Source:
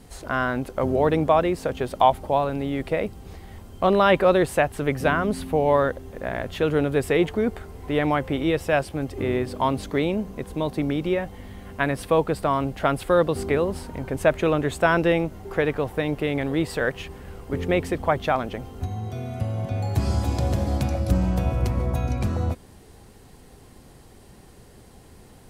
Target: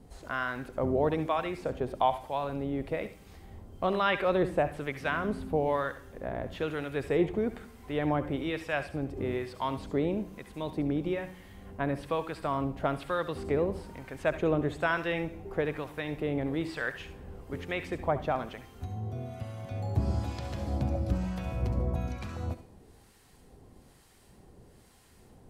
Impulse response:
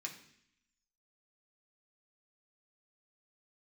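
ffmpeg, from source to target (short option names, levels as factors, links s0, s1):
-filter_complex "[0:a]acrossover=split=990[s0][s1];[s0]aeval=exprs='val(0)*(1-0.7/2+0.7/2*cos(2*PI*1.1*n/s))':c=same[s2];[s1]aeval=exprs='val(0)*(1-0.7/2-0.7/2*cos(2*PI*1.1*n/s))':c=same[s3];[s2][s3]amix=inputs=2:normalize=0,asplit=2[s4][s5];[1:a]atrim=start_sample=2205,adelay=67[s6];[s5][s6]afir=irnorm=-1:irlink=0,volume=0.335[s7];[s4][s7]amix=inputs=2:normalize=0,acrossover=split=5200[s8][s9];[s9]acompressor=threshold=0.002:ratio=4:attack=1:release=60[s10];[s8][s10]amix=inputs=2:normalize=0,volume=0.562"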